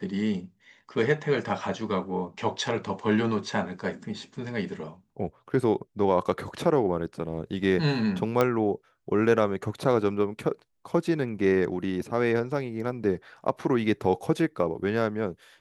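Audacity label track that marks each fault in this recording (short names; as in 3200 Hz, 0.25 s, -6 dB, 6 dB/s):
8.410000	8.410000	pop -10 dBFS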